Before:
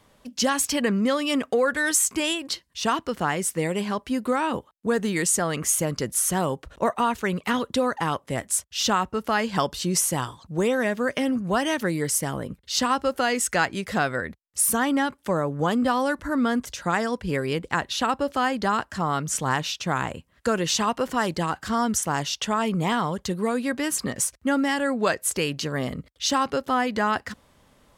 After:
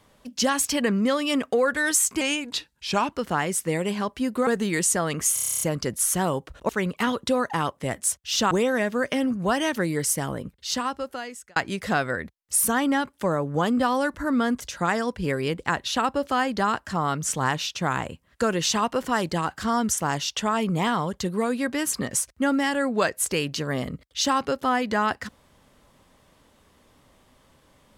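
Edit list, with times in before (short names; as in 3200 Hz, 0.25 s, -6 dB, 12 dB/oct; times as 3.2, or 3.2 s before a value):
2.21–3.02 speed 89%
4.37–4.9 cut
5.77 stutter 0.03 s, 10 plays
6.85–7.16 cut
8.98–10.56 cut
12.38–13.61 fade out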